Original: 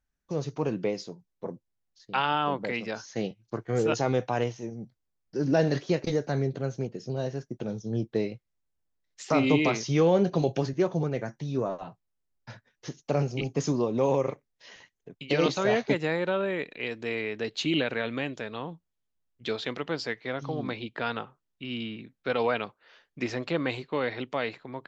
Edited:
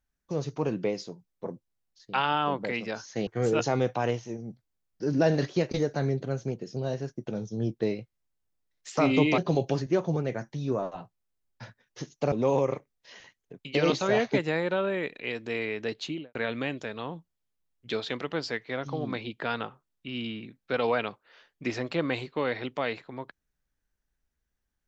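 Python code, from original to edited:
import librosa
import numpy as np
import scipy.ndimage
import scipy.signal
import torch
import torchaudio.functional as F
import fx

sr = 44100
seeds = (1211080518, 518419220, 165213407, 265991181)

y = fx.studio_fade_out(x, sr, start_s=17.46, length_s=0.45)
y = fx.edit(y, sr, fx.cut(start_s=3.27, length_s=0.33),
    fx.cut(start_s=9.71, length_s=0.54),
    fx.cut(start_s=13.19, length_s=0.69), tone=tone)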